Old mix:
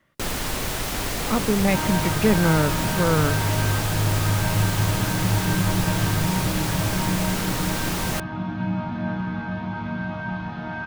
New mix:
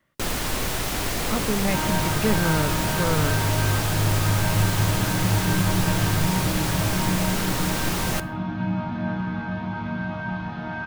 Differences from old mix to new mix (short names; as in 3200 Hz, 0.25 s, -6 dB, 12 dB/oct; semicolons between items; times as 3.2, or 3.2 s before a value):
speech -4.5 dB; first sound: send on